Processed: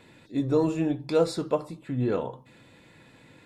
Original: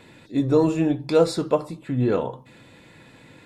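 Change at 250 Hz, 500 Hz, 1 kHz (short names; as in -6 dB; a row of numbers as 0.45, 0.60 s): -5.0, -5.0, -5.0 dB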